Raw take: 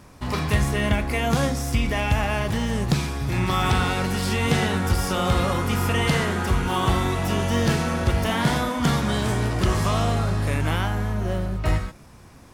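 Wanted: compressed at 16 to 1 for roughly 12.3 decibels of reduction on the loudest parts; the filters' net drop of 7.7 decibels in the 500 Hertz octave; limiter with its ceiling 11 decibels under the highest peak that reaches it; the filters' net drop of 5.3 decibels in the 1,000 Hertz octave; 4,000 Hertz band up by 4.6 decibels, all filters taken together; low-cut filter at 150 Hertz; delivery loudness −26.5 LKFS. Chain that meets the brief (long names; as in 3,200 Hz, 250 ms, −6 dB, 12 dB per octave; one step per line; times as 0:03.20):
high-pass filter 150 Hz
parametric band 500 Hz −9 dB
parametric band 1,000 Hz −4.5 dB
parametric band 4,000 Hz +6.5 dB
downward compressor 16 to 1, threshold −31 dBFS
level +9.5 dB
brickwall limiter −17 dBFS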